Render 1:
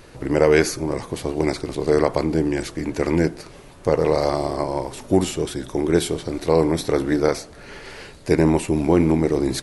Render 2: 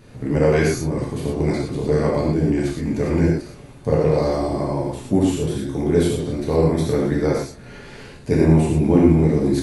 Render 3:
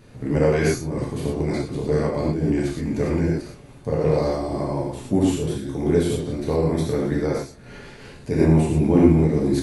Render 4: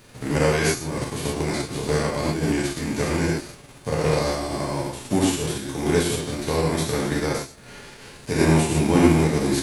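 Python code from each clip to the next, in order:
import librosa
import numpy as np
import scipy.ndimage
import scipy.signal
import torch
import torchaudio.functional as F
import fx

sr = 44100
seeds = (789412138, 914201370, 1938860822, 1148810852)

y1 = fx.peak_eq(x, sr, hz=150.0, db=13.0, octaves=1.8)
y1 = fx.notch(y1, sr, hz=5300.0, q=21.0)
y1 = fx.rev_gated(y1, sr, seeds[0], gate_ms=140, shape='flat', drr_db=-4.0)
y1 = F.gain(torch.from_numpy(y1), -8.5).numpy()
y2 = fx.am_noise(y1, sr, seeds[1], hz=5.7, depth_pct=50)
y3 = fx.envelope_flatten(y2, sr, power=0.6)
y3 = F.gain(torch.from_numpy(y3), -1.5).numpy()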